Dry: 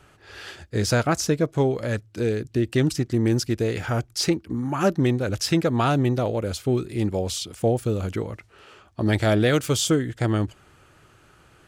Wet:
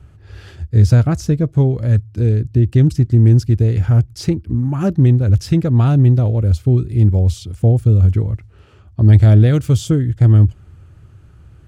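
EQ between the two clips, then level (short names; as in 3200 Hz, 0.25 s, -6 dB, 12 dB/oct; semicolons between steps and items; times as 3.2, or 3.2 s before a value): bell 82 Hz +12 dB 1.6 oct; low shelf 160 Hz +6 dB; low shelf 370 Hz +10 dB; -6.0 dB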